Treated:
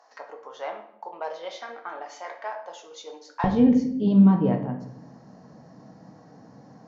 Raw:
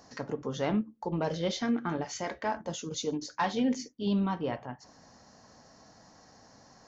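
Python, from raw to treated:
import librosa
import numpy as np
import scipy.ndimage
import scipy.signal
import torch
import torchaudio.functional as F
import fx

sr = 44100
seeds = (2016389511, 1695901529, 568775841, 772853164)

y = fx.highpass(x, sr, hz=fx.steps((0.0, 700.0), (3.44, 140.0)), slope=24)
y = fx.tilt_eq(y, sr, slope=-4.5)
y = fx.room_shoebox(y, sr, seeds[0], volume_m3=170.0, walls='mixed', distance_m=0.58)
y = y * 10.0 ** (1.5 / 20.0)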